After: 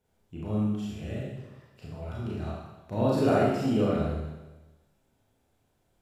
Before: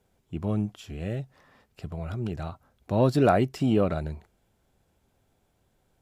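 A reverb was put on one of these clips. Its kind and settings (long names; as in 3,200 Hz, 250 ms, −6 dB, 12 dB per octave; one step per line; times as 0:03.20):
four-comb reverb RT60 1.1 s, combs from 26 ms, DRR −6.5 dB
level −9 dB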